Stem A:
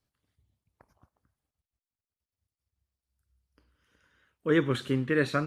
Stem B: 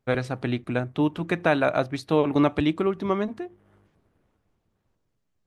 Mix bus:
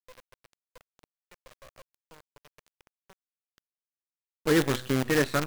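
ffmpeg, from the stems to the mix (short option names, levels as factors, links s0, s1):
-filter_complex "[0:a]acontrast=66,volume=0.562[s0];[1:a]acompressor=threshold=0.0708:ratio=8,asplit=3[s1][s2][s3];[s1]bandpass=f=530:t=q:w=8,volume=1[s4];[s2]bandpass=f=1840:t=q:w=8,volume=0.501[s5];[s3]bandpass=f=2480:t=q:w=8,volume=0.355[s6];[s4][s5][s6]amix=inputs=3:normalize=0,adynamicequalizer=threshold=0.00398:dfrequency=2300:dqfactor=0.7:tfrequency=2300:tqfactor=0.7:attack=5:release=100:ratio=0.375:range=2:mode=cutabove:tftype=highshelf,volume=0.178[s7];[s0][s7]amix=inputs=2:normalize=0,bandreject=f=126.5:t=h:w=4,bandreject=f=253:t=h:w=4,bandreject=f=379.5:t=h:w=4,bandreject=f=506:t=h:w=4,bandreject=f=632.5:t=h:w=4,bandreject=f=759:t=h:w=4,bandreject=f=885.5:t=h:w=4,bandreject=f=1012:t=h:w=4,bandreject=f=1138.5:t=h:w=4,bandreject=f=1265:t=h:w=4,bandreject=f=1391.5:t=h:w=4,bandreject=f=1518:t=h:w=4,bandreject=f=1644.5:t=h:w=4,bandreject=f=1771:t=h:w=4,bandreject=f=1897.5:t=h:w=4,bandreject=f=2024:t=h:w=4,bandreject=f=2150.5:t=h:w=4,bandreject=f=2277:t=h:w=4,bandreject=f=2403.5:t=h:w=4,bandreject=f=2530:t=h:w=4,bandreject=f=2656.5:t=h:w=4,bandreject=f=2783:t=h:w=4,bandreject=f=2909.5:t=h:w=4,bandreject=f=3036:t=h:w=4,bandreject=f=3162.5:t=h:w=4,acrusher=bits=5:dc=4:mix=0:aa=0.000001"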